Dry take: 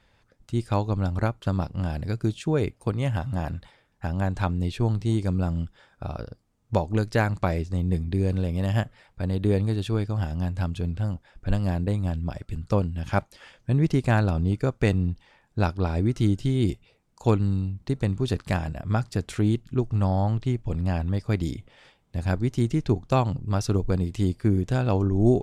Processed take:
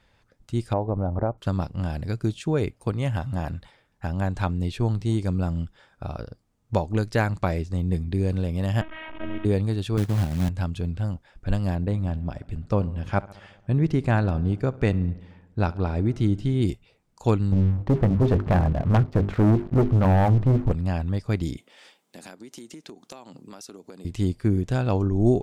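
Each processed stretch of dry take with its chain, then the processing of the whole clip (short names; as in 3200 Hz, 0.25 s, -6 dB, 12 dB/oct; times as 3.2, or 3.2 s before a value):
0.73–1.38 LPF 1000 Hz + bell 630 Hz +9.5 dB 1.5 oct + compressor 3:1, threshold -20 dBFS
8.81–9.45 delta modulation 16 kbps, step -29.5 dBFS + robotiser 317 Hz
9.97–10.49 HPF 96 Hz + tilt shelf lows +6.5 dB, about 630 Hz + short-mantissa float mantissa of 2-bit
11.75–16.62 high shelf 4500 Hz -9.5 dB + darkening echo 69 ms, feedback 70%, low-pass 3600 Hz, level -20.5 dB
17.52–20.72 LPF 1100 Hz + notches 50/100/150/200/250/300/350/400 Hz + sample leveller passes 3
21.57–24.05 HPF 220 Hz 24 dB/oct + high shelf 4200 Hz +11 dB + compressor 12:1, threshold -38 dBFS
whole clip: dry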